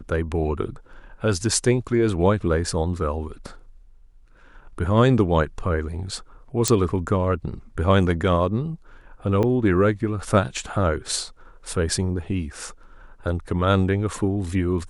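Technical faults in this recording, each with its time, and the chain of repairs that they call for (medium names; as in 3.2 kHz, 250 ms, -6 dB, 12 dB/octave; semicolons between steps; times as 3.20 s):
6.68 s: pop -5 dBFS
9.43 s: dropout 4.8 ms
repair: de-click; interpolate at 9.43 s, 4.8 ms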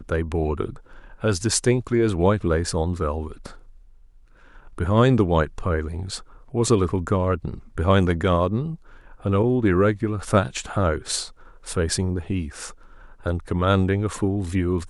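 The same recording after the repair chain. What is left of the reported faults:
nothing left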